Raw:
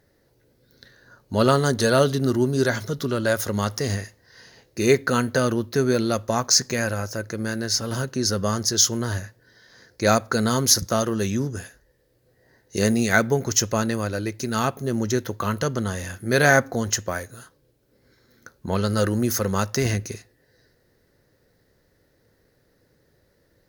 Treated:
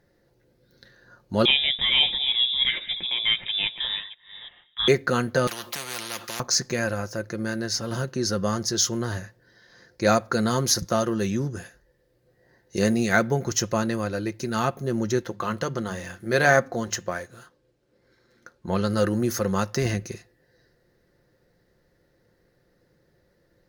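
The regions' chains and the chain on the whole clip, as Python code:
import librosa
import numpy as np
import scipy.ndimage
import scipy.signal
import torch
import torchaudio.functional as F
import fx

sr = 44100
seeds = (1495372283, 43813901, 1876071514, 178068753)

y = fx.chain(x, sr, fx.reverse_delay(ms=337, wet_db=-14.0),
    fx.freq_invert(carrier_hz=3700), at=(1.45, 4.88))
y = fx.chain(y, sr, fx.highpass(hz=300.0, slope=12),
    fx.spectral_comp(ratio=10.0), at=(5.47, 6.4))
y = fx.chain(y, sr, fx.median_filter(points=3),
    fx.low_shelf(hz=220.0, db=-4.0),
    fx.hum_notches(base_hz=50, count=5), at=(15.21, 18.69))
y = fx.high_shelf(y, sr, hz=5900.0, db=-8.0)
y = y + 0.34 * np.pad(y, (int(5.7 * sr / 1000.0), 0))[:len(y)]
y = y * 10.0 ** (-1.5 / 20.0)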